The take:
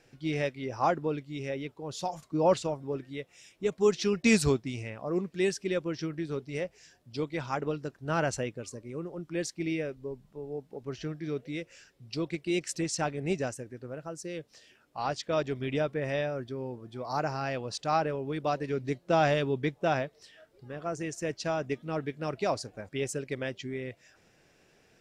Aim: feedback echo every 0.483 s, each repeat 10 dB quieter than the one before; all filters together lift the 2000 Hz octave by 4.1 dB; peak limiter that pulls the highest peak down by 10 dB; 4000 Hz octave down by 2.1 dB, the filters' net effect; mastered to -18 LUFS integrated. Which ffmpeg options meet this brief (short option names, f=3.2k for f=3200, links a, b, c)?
-af "equalizer=f=2k:t=o:g=6.5,equalizer=f=4k:t=o:g=-5,alimiter=limit=-20dB:level=0:latency=1,aecho=1:1:483|966|1449|1932:0.316|0.101|0.0324|0.0104,volume=15.5dB"